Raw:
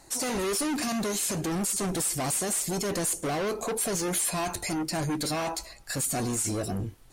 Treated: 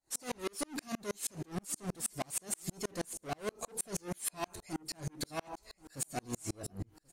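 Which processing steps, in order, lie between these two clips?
repeating echo 1,083 ms, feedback 43%, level −18.5 dB
tremolo with a ramp in dB swelling 6.3 Hz, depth 39 dB
level −2 dB

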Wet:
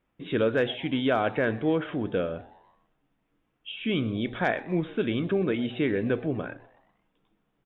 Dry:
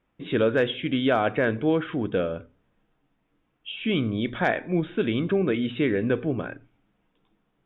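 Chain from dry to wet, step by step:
echo with shifted repeats 124 ms, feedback 50%, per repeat +130 Hz, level −21.5 dB
level −2.5 dB

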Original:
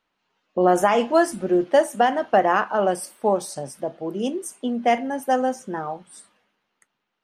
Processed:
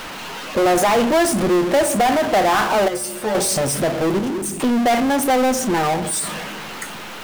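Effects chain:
0:04.19–0:04.60: guitar amp tone stack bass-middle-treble 10-0-1
on a send at −17 dB: Butterworth band-reject 1,500 Hz, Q 0.65 + convolution reverb RT60 0.60 s, pre-delay 11 ms
on the sum: power curve on the samples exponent 0.35
0:02.88–0:03.35: stiff-string resonator 70 Hz, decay 0.25 s, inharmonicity 0.002
in parallel at −1.5 dB: downward compressor, threshold −21 dBFS, peak gain reduction 11.5 dB
on the sum: level −6 dB

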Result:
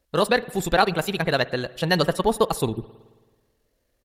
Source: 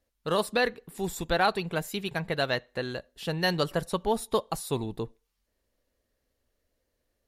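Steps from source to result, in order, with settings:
tempo change 1.8×
time-frequency box erased 0:02.72–0:02.99, 420–7,800 Hz
spring reverb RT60 1.4 s, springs 54 ms, chirp 30 ms, DRR 18.5 dB
level +7 dB

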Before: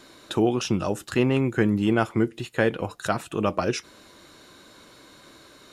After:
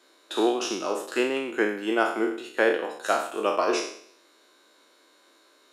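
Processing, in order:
peak hold with a decay on every bin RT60 0.87 s
high-pass filter 310 Hz 24 dB per octave
expander for the loud parts 1.5 to 1, over −40 dBFS

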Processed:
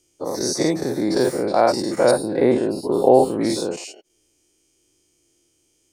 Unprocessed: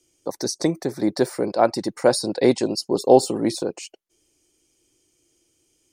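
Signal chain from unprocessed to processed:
every bin's largest magnitude spread in time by 120 ms
0:02.11–0:03.41: drawn EQ curve 1,400 Hz 0 dB, 3,800 Hz −10 dB, 6,000 Hz −23 dB, 9,900 Hz −7 dB
level −3.5 dB

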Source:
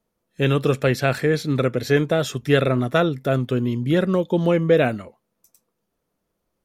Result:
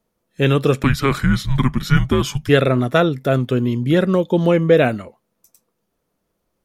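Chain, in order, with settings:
0:00.83–0:02.49: frequency shifter −270 Hz
level +3.5 dB

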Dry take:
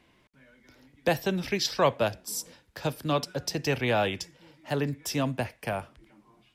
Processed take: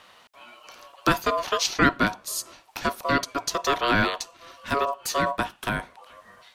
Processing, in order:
ring modulation 840 Hz
one half of a high-frequency compander encoder only
level +6.5 dB

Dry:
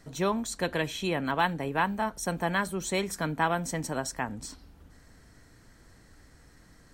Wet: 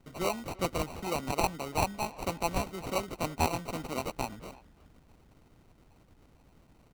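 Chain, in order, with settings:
decimation without filtering 26×
harmonic and percussive parts rebalanced harmonic −10 dB
far-end echo of a speakerphone 340 ms, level −20 dB

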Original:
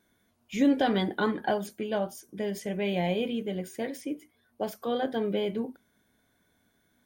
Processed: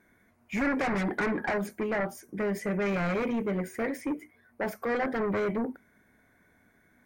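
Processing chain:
in parallel at −9 dB: sine wavefolder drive 15 dB, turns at −13.5 dBFS
on the sum: high shelf with overshoot 2,600 Hz −6.5 dB, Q 3
level −7 dB

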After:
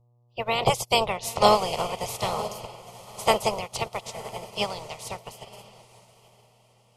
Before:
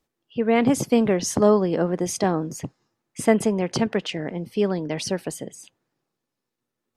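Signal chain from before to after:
ceiling on every frequency bin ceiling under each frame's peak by 27 dB
hum with harmonics 120 Hz, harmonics 10, −39 dBFS −9 dB per octave
phaser with its sweep stopped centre 680 Hz, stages 4
feedback delay with all-pass diffusion 945 ms, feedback 53%, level −8 dB
in parallel at −1.5 dB: brickwall limiter −18.5 dBFS, peak gain reduction 11 dB
on the sum: expander for the loud parts 2.5 to 1, over −34 dBFS
level +2 dB

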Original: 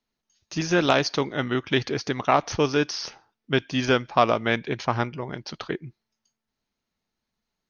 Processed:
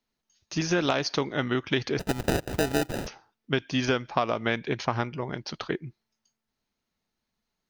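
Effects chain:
0:01.99–0:03.07: sample-rate reduction 1,100 Hz, jitter 0%
downward compressor 6 to 1, threshold −21 dBFS, peak gain reduction 9 dB

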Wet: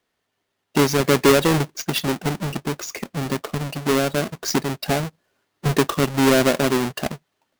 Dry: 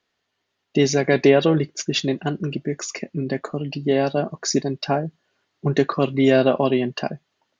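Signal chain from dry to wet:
each half-wave held at its own peak
level −4 dB

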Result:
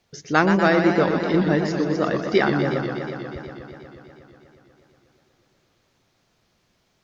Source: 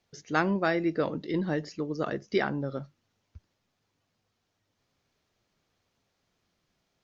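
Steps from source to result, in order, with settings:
feedback echo with a swinging delay time 121 ms, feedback 80%, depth 142 cents, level −7.5 dB
level +8 dB

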